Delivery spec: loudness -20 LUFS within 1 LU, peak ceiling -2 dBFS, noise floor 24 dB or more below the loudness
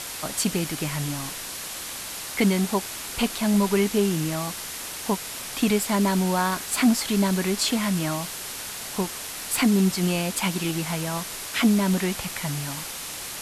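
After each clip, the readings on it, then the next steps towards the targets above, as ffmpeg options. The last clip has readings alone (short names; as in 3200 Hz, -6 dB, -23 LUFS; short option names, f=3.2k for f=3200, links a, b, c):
noise floor -35 dBFS; noise floor target -49 dBFS; loudness -25.0 LUFS; peak -9.0 dBFS; loudness target -20.0 LUFS
-> -af "afftdn=nr=14:nf=-35"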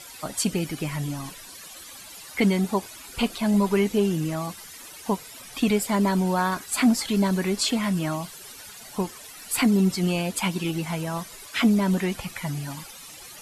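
noise floor -44 dBFS; noise floor target -49 dBFS
-> -af "afftdn=nr=6:nf=-44"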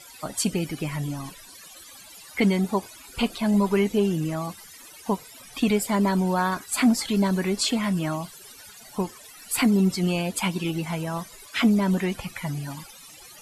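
noise floor -47 dBFS; noise floor target -49 dBFS
-> -af "afftdn=nr=6:nf=-47"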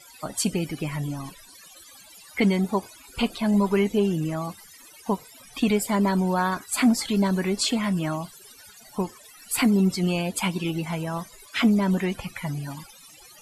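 noise floor -50 dBFS; loudness -25.0 LUFS; peak -10.5 dBFS; loudness target -20.0 LUFS
-> -af "volume=5dB"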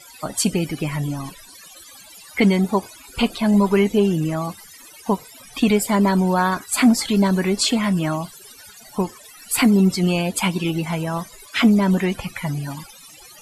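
loudness -20.0 LUFS; peak -5.5 dBFS; noise floor -45 dBFS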